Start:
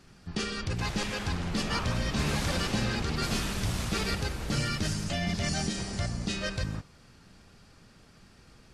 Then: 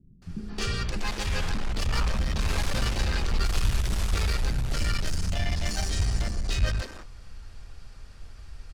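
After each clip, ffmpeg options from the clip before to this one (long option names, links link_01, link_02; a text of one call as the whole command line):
ffmpeg -i in.wav -filter_complex "[0:a]asubboost=boost=11.5:cutoff=52,asplit=2[link_01][link_02];[link_02]aeval=exprs='0.0473*(abs(mod(val(0)/0.0473+3,4)-2)-1)':channel_layout=same,volume=-3dB[link_03];[link_01][link_03]amix=inputs=2:normalize=0,acrossover=split=280[link_04][link_05];[link_05]adelay=220[link_06];[link_04][link_06]amix=inputs=2:normalize=0,volume=-2dB" out.wav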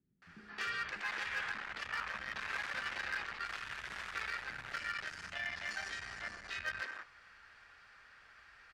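ffmpeg -i in.wav -af "alimiter=limit=-23dB:level=0:latency=1:release=38,bandpass=frequency=1700:width_type=q:width=2.5:csg=0,asoftclip=type=hard:threshold=-36.5dB,volume=5.5dB" out.wav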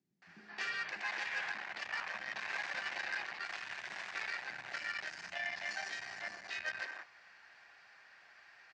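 ffmpeg -i in.wav -af "highpass=210,equalizer=frequency=250:width_type=q:width=4:gain=-6,equalizer=frequency=460:width_type=q:width=4:gain=-6,equalizer=frequency=730:width_type=q:width=4:gain=5,equalizer=frequency=1300:width_type=q:width=4:gain=-9,equalizer=frequency=3300:width_type=q:width=4:gain=-4,lowpass=frequency=7200:width=0.5412,lowpass=frequency=7200:width=1.3066,volume=2dB" out.wav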